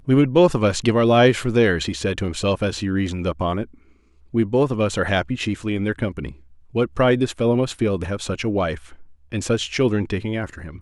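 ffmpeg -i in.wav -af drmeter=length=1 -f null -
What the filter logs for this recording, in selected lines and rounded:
Channel 1: DR: 9.5
Overall DR: 9.5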